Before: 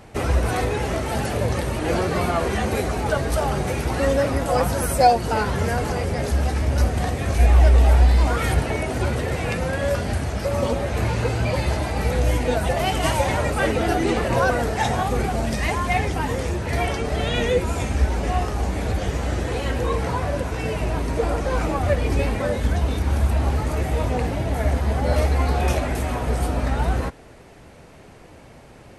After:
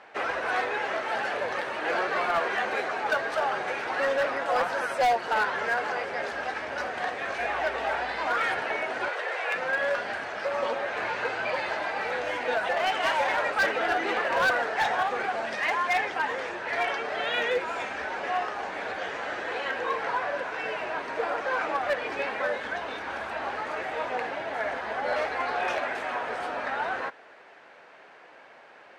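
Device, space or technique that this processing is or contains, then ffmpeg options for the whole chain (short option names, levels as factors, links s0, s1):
megaphone: -filter_complex "[0:a]asettb=1/sr,asplit=3[s0][s1][s2];[s0]atrim=end=9.084[s3];[s1]atrim=start=9.08:end=9.55,asetpts=PTS-STARTPTS,afade=t=in:d=0.004:c=qsin,afade=t=out:st=0.466:d=0.004:c=qsin,highpass=f=420:w=0.5412,highpass=f=420:w=1.3066[s4];[s2]atrim=start=9.546[s5];[s3][s4]acrossfade=d=0.004:c1=hsin:c2=qsin[s6];[s6][s5]acrossfade=d=0.004:c1=qsin:c2=hsin,highpass=680,lowpass=3100,equalizer=f=1600:t=o:w=0.31:g=6,asoftclip=type=hard:threshold=0.106"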